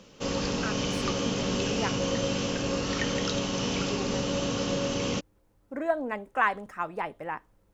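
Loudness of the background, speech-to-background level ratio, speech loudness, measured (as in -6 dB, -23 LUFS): -29.0 LUFS, -4.5 dB, -33.5 LUFS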